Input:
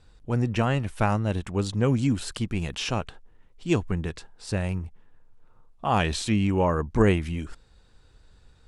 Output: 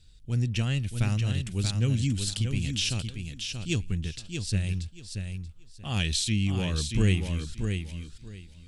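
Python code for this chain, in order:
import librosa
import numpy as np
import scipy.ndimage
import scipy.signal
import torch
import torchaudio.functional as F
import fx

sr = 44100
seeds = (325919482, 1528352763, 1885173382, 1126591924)

p1 = fx.curve_eq(x, sr, hz=(120.0, 970.0, 3300.0), db=(0, -20, 4))
y = p1 + fx.echo_feedback(p1, sr, ms=632, feedback_pct=20, wet_db=-6.0, dry=0)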